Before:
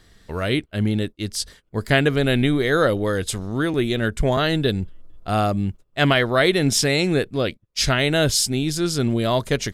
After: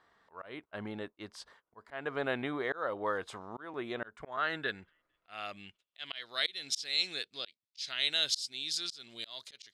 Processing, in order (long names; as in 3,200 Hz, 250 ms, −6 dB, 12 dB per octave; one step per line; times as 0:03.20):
band-pass filter sweep 1,000 Hz → 4,200 Hz, 0:04.00–0:06.30
volume swells 305 ms